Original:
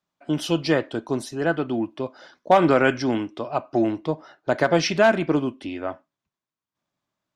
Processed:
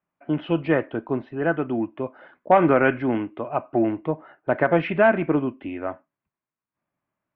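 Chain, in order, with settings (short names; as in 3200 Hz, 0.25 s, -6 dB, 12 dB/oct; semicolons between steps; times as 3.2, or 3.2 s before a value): steep low-pass 2600 Hz 36 dB/oct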